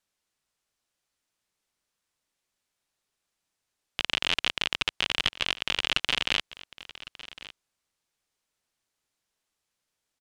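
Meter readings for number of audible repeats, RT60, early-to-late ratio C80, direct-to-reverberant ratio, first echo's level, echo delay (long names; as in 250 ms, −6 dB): 1, no reverb audible, no reverb audible, no reverb audible, −17.5 dB, 1,106 ms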